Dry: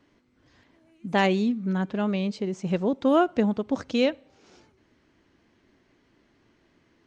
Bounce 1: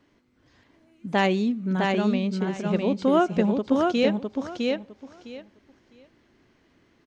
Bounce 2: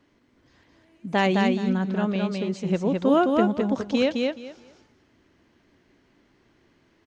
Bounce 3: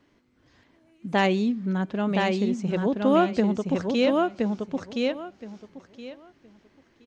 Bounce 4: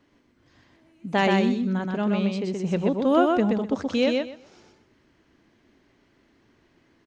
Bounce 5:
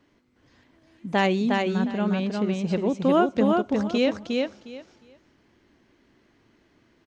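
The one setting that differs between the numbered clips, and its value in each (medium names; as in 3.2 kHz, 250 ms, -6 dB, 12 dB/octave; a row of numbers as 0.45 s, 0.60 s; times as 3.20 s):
feedback delay, time: 657 ms, 212 ms, 1020 ms, 126 ms, 358 ms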